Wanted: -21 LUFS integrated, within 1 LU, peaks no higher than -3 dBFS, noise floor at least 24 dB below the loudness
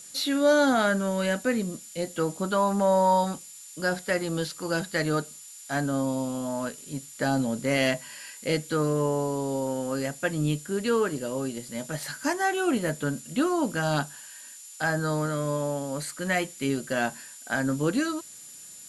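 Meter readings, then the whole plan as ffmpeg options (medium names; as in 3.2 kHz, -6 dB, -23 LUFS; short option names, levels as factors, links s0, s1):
steady tone 7.1 kHz; tone level -46 dBFS; noise floor -46 dBFS; noise floor target -52 dBFS; loudness -27.5 LUFS; peak level -11.5 dBFS; loudness target -21.0 LUFS
-> -af "bandreject=f=7100:w=30"
-af "afftdn=nr=6:nf=-46"
-af "volume=2.11"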